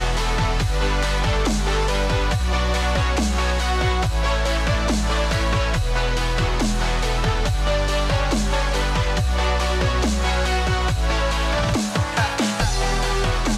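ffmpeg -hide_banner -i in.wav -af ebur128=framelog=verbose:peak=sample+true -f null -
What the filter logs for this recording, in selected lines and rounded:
Integrated loudness:
  I:         -21.3 LUFS
  Threshold: -31.3 LUFS
Loudness range:
  LRA:         0.6 LU
  Threshold: -41.3 LUFS
  LRA low:   -21.7 LUFS
  LRA high:  -21.0 LUFS
Sample peak:
  Peak:       -9.6 dBFS
True peak:
  Peak:       -9.6 dBFS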